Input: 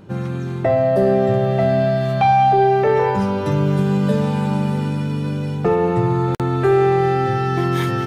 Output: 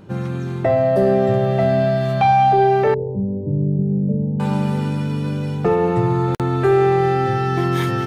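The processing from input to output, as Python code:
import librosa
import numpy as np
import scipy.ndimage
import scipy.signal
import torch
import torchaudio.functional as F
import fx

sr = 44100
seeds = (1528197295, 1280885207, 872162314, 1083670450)

y = fx.gaussian_blur(x, sr, sigma=20.0, at=(2.94, 4.4))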